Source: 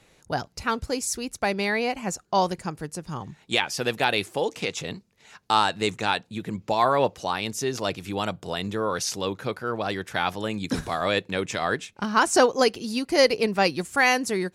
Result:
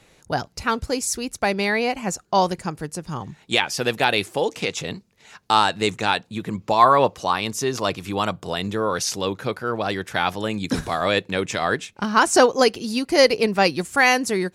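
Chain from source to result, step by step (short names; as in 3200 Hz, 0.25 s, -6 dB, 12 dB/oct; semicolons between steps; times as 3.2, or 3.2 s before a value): 6.27–8.48 bell 1100 Hz +6.5 dB 0.32 oct; gain +3.5 dB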